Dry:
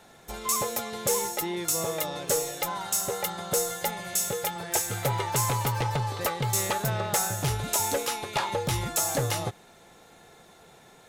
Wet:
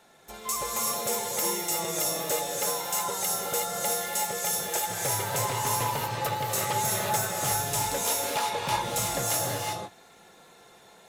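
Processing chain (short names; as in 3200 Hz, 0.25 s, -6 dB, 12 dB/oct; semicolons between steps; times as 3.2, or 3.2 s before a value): low shelf 170 Hz -8.5 dB; non-linear reverb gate 0.4 s rising, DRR -2.5 dB; gain -4 dB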